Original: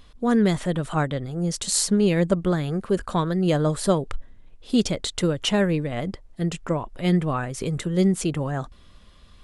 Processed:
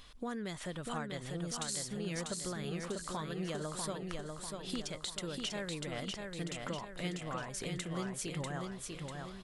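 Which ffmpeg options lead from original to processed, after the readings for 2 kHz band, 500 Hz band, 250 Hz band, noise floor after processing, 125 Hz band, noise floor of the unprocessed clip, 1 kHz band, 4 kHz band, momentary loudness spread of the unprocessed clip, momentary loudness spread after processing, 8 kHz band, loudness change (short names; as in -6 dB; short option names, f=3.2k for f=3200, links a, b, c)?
-10.5 dB, -16.5 dB, -18.0 dB, -48 dBFS, -17.0 dB, -50 dBFS, -13.0 dB, -10.5 dB, 9 LU, 4 LU, -11.0 dB, -16.0 dB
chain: -filter_complex "[0:a]tiltshelf=f=800:g=-5,acompressor=threshold=-35dB:ratio=6,asplit=2[a][b];[b]aecho=0:1:644|1288|1932|2576|3220|3864:0.631|0.315|0.158|0.0789|0.0394|0.0197[c];[a][c]amix=inputs=2:normalize=0,volume=-3.5dB"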